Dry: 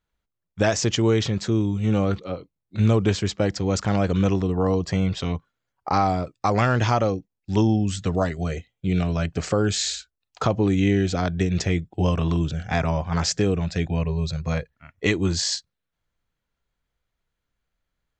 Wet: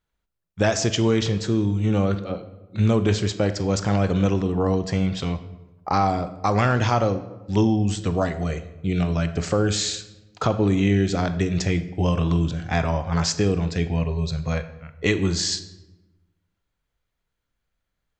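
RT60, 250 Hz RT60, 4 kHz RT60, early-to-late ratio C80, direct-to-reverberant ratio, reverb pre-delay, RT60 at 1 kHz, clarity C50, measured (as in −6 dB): 1.1 s, 1.4 s, 0.65 s, 15.0 dB, 10.0 dB, 18 ms, 1.0 s, 12.5 dB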